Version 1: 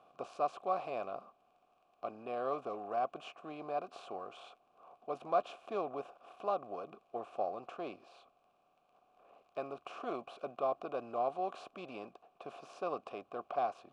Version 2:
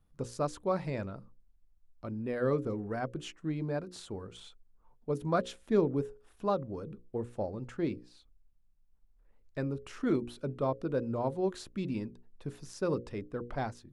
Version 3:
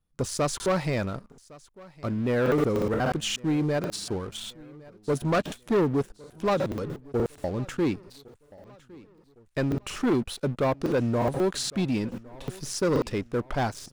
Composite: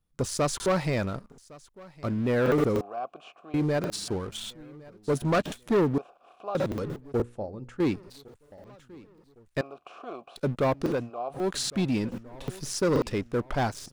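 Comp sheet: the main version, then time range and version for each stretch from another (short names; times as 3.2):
3
2.81–3.54 from 1
5.98–6.55 from 1
7.22–7.8 from 2
9.61–10.36 from 1
10.99–11.41 from 1, crossfade 0.24 s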